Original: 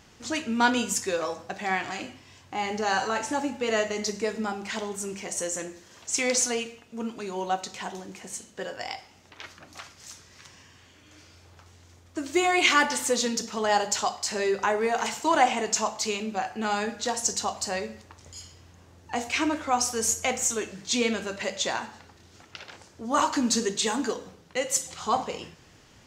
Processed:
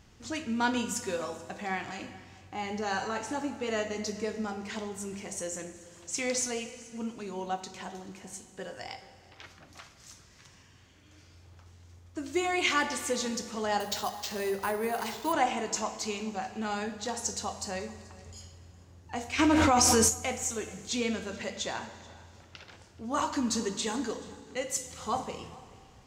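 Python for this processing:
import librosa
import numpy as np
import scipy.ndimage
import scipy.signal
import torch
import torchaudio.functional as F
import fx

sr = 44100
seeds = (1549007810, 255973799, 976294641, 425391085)

y = fx.low_shelf(x, sr, hz=150.0, db=11.5)
y = y + 10.0 ** (-22.5 / 20.0) * np.pad(y, (int(432 * sr / 1000.0), 0))[:len(y)]
y = fx.rev_plate(y, sr, seeds[0], rt60_s=2.4, hf_ratio=0.9, predelay_ms=0, drr_db=11.5)
y = fx.resample_bad(y, sr, factor=4, down='none', up='hold', at=(13.8, 15.33))
y = fx.env_flatten(y, sr, amount_pct=100, at=(19.38, 20.08), fade=0.02)
y = y * librosa.db_to_amplitude(-7.0)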